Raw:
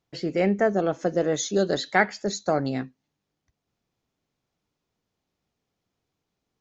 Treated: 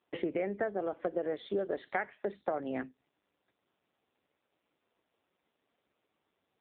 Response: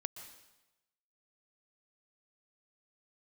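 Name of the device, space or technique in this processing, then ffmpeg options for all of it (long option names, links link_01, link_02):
voicemail: -af "highpass=320,lowpass=2900,acompressor=threshold=-38dB:ratio=8,volume=8dB" -ar 8000 -c:a libopencore_amrnb -b:a 5900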